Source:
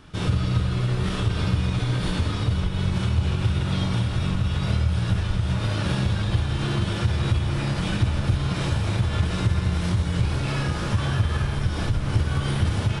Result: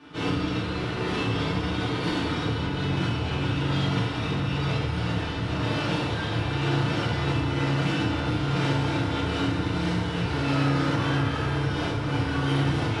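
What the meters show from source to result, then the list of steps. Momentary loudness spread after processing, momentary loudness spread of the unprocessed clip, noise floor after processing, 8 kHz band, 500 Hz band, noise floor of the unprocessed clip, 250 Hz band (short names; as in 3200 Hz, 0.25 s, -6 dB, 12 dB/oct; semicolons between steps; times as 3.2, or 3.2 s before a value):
3 LU, 2 LU, -30 dBFS, -5.0 dB, +3.5 dB, -28 dBFS, +1.5 dB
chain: three-band isolator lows -20 dB, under 170 Hz, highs -13 dB, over 4900 Hz; tube stage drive 25 dB, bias 0.4; FDN reverb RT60 0.72 s, low-frequency decay 1.3×, high-frequency decay 0.75×, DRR -7.5 dB; gain -2.5 dB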